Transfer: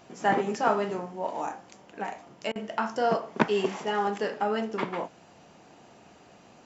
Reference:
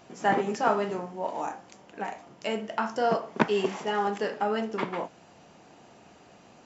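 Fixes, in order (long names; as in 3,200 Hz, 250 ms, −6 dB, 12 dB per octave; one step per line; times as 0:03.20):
repair the gap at 0:02.52, 35 ms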